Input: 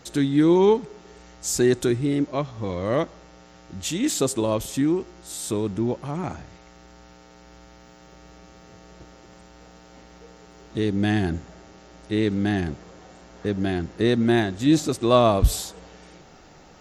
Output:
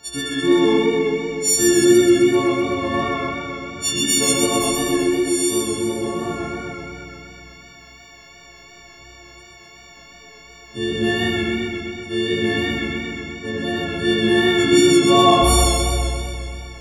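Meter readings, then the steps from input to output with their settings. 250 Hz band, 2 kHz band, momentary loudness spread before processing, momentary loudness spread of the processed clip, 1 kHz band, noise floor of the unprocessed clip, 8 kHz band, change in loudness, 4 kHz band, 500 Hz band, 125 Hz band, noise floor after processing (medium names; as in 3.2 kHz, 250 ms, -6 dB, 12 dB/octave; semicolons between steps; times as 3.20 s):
+4.5 dB, +11.0 dB, 14 LU, 16 LU, +7.0 dB, -50 dBFS, +11.5 dB, +5.0 dB, +12.5 dB, +5.0 dB, 0.0 dB, -44 dBFS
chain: partials quantised in pitch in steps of 4 st; spring tank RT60 2.8 s, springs 31/48 ms, chirp 35 ms, DRR -7 dB; modulated delay 128 ms, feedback 64%, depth 56 cents, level -3.5 dB; trim -4 dB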